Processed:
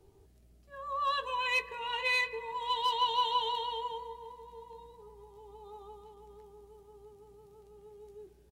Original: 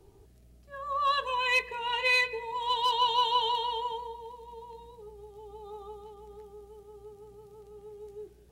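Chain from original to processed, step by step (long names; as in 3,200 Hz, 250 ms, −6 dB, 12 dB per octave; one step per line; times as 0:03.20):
double-tracking delay 13 ms −11 dB
bucket-brigade delay 273 ms, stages 4,096, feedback 72%, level −22 dB
level −4.5 dB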